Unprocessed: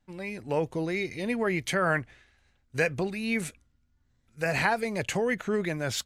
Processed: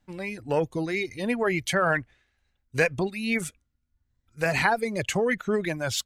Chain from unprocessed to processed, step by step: added harmonics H 8 -35 dB, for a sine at -9.5 dBFS; reverb removal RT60 1.4 s; gain +3.5 dB

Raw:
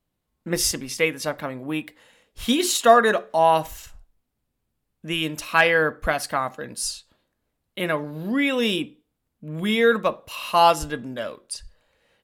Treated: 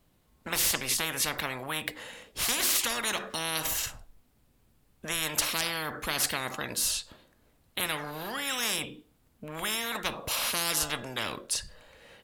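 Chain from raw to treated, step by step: spectral compressor 10:1; gain -7.5 dB

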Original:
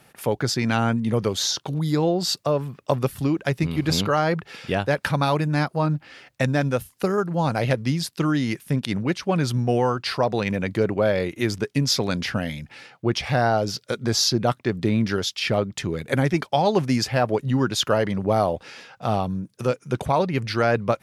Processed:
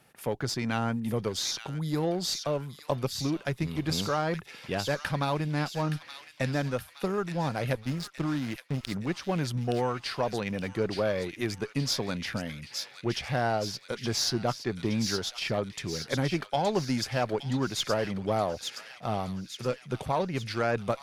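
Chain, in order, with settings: 7.74–8.92 backlash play -25 dBFS; added harmonics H 8 -29 dB, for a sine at -6 dBFS; thin delay 0.87 s, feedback 55%, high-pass 2300 Hz, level -5 dB; gain -7.5 dB

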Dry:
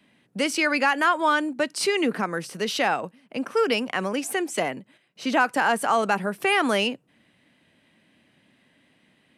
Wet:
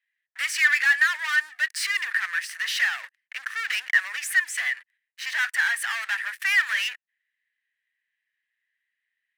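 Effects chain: sample leveller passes 5; ladder high-pass 1700 Hz, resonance 80%; gain -3.5 dB

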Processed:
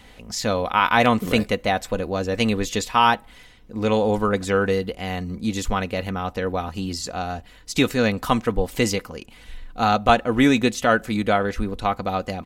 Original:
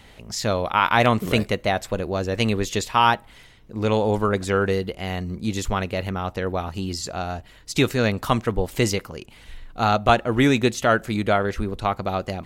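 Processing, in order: comb 4 ms, depth 39%

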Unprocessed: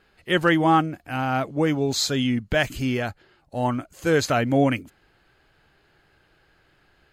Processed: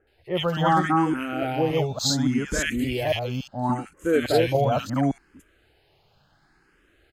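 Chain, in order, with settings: reverse delay 0.284 s, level 0 dB; bands offset in time lows, highs 70 ms, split 1600 Hz; endless phaser +0.71 Hz

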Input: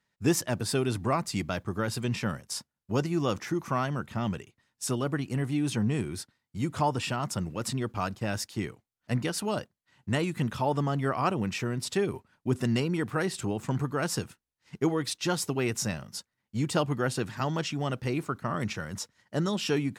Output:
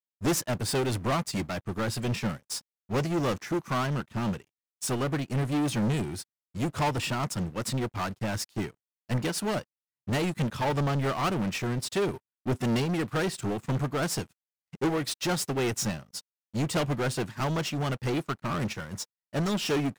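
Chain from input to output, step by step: sample leveller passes 5; upward expander 2.5:1, over -30 dBFS; gain -7.5 dB

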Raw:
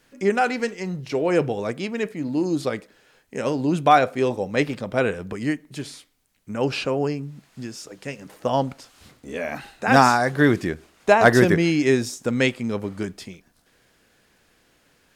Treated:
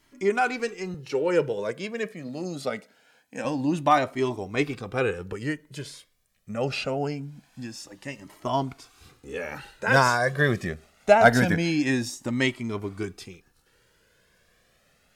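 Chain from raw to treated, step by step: 0.94–3.45 HPF 170 Hz 12 dB/oct; cascading flanger rising 0.24 Hz; gain +1.5 dB

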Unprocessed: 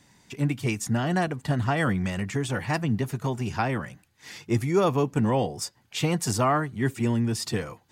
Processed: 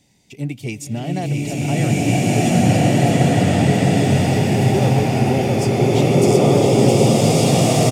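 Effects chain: band shelf 1300 Hz -13 dB 1.1 oct; echo 0.665 s -4.5 dB; bloom reverb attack 1.68 s, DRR -10.5 dB

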